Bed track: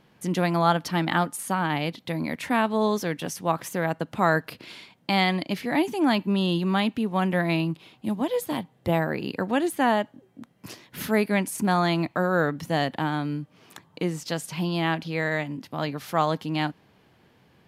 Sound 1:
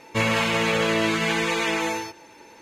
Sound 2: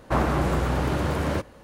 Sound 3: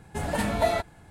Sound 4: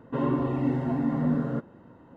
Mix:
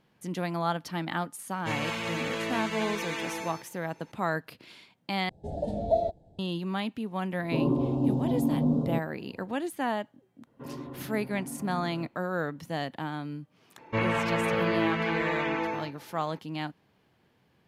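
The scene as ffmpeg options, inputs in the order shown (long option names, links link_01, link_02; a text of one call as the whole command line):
ffmpeg -i bed.wav -i cue0.wav -i cue1.wav -i cue2.wav -i cue3.wav -filter_complex "[1:a]asplit=2[link_01][link_02];[4:a]asplit=2[link_03][link_04];[0:a]volume=-8dB[link_05];[3:a]firequalizer=gain_entry='entry(340,0);entry(650,7);entry(1100,-30);entry(2300,-27);entry(3600,-11);entry(11000,-26)':delay=0.05:min_phase=1[link_06];[link_03]asuperstop=centerf=1800:order=4:qfactor=0.6[link_07];[link_02]lowpass=2000[link_08];[link_05]asplit=2[link_09][link_10];[link_09]atrim=end=5.294[link_11];[link_06]atrim=end=1.1,asetpts=PTS-STARTPTS,volume=-5.5dB[link_12];[link_10]atrim=start=6.386[link_13];[link_01]atrim=end=2.61,asetpts=PTS-STARTPTS,volume=-10.5dB,afade=type=in:duration=0.004:curve=hsin,afade=type=out:start_time=2.606:duration=0.004:curve=hsin,adelay=1510[link_14];[link_07]atrim=end=2.16,asetpts=PTS-STARTPTS,afade=type=in:duration=0.004:curve=hsin,afade=type=out:start_time=2.156:duration=0.004:curve=hsin,adelay=7390[link_15];[link_04]atrim=end=2.16,asetpts=PTS-STARTPTS,volume=-14.5dB,afade=type=in:duration=0.004:curve=hsin,afade=type=out:start_time=2.156:duration=0.004:curve=hsin,adelay=10470[link_16];[link_08]atrim=end=2.61,asetpts=PTS-STARTPTS,volume=-4dB,afade=type=in:duration=0.004:curve=hsin,afade=type=out:start_time=2.606:duration=0.004:curve=hsin,adelay=13780[link_17];[link_11][link_12]acrossfade=duration=0.004:curve1=hsin:curve2=hsin[link_18];[link_18][link_13]acrossfade=duration=0.004:curve1=hsin:curve2=hsin[link_19];[link_19][link_14][link_15][link_16][link_17]amix=inputs=5:normalize=0" out.wav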